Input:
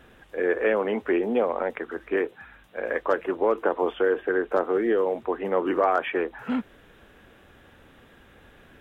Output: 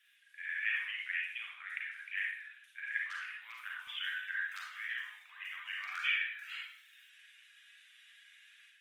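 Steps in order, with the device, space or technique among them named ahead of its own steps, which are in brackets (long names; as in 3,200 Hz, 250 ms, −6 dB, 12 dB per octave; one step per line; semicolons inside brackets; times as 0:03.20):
Butterworth high-pass 1,900 Hz 36 dB per octave
reverb reduction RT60 0.74 s
0:03.38–0:04.86: high-shelf EQ 2,400 Hz +3.5 dB
far-field microphone of a smart speaker (convolution reverb RT60 0.75 s, pre-delay 35 ms, DRR −3.5 dB; high-pass filter 82 Hz 6 dB per octave; automatic gain control gain up to 7 dB; level −7.5 dB; Opus 24 kbit/s 48,000 Hz)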